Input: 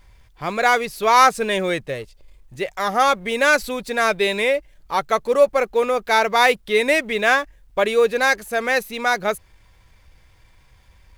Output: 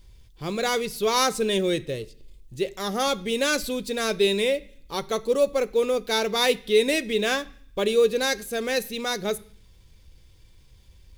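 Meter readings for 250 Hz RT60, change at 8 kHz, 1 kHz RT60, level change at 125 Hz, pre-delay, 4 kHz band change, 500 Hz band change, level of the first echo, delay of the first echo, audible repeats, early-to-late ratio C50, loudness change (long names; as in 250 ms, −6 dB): 0.75 s, 0.0 dB, 0.50 s, can't be measured, 3 ms, 0.0 dB, −3.5 dB, no echo audible, no echo audible, no echo audible, 20.5 dB, −5.5 dB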